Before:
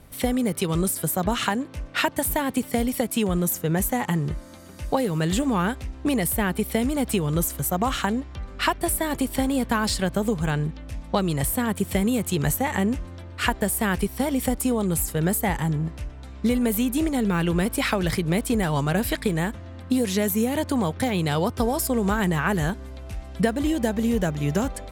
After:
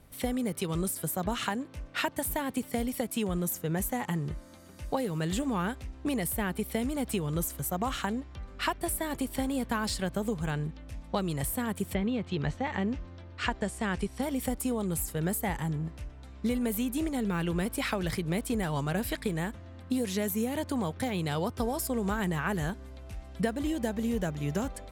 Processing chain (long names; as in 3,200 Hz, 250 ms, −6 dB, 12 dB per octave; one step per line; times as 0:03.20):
0:11.93–0:14.21: low-pass filter 3,700 Hz → 9,400 Hz 24 dB per octave
level −7.5 dB